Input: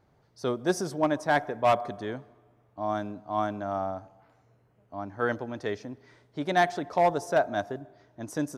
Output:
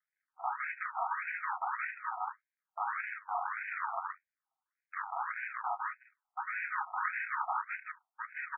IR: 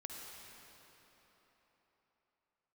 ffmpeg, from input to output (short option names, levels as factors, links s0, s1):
-filter_complex "[0:a]lowshelf=f=240:t=q:w=1.5:g=-10,acompressor=mode=upward:threshold=0.0158:ratio=2.5,acrusher=samples=35:mix=1:aa=0.000001,bass=f=250:g=10,treble=f=4000:g=8,aecho=1:1:29.15|154.5|195.3:0.355|0.708|0.282,acompressor=threshold=0.0355:ratio=3,aeval=exprs='0.2*(cos(1*acos(clip(val(0)/0.2,-1,1)))-cos(1*PI/2))+0.00447*(cos(3*acos(clip(val(0)/0.2,-1,1)))-cos(3*PI/2))+0.0398*(cos(5*acos(clip(val(0)/0.2,-1,1)))-cos(5*PI/2))+0.0708*(cos(6*acos(clip(val(0)/0.2,-1,1)))-cos(6*PI/2))+0.0631*(cos(7*acos(clip(val(0)/0.2,-1,1)))-cos(7*PI/2))':c=same,asplit=3[s0][s1][s2];[s1]asetrate=33038,aresample=44100,atempo=1.33484,volume=0.631[s3];[s2]asetrate=52444,aresample=44100,atempo=0.840896,volume=0.178[s4];[s0][s3][s4]amix=inputs=3:normalize=0,agate=range=0.0224:threshold=0.0398:ratio=3:detection=peak,asoftclip=type=tanh:threshold=0.0944,asuperstop=centerf=2800:order=4:qfactor=4.2,afftfilt=real='re*between(b*sr/1024,950*pow(2100/950,0.5+0.5*sin(2*PI*1.7*pts/sr))/1.41,950*pow(2100/950,0.5+0.5*sin(2*PI*1.7*pts/sr))*1.41)':imag='im*between(b*sr/1024,950*pow(2100/950,0.5+0.5*sin(2*PI*1.7*pts/sr))/1.41,950*pow(2100/950,0.5+0.5*sin(2*PI*1.7*pts/sr))*1.41)':win_size=1024:overlap=0.75,volume=2"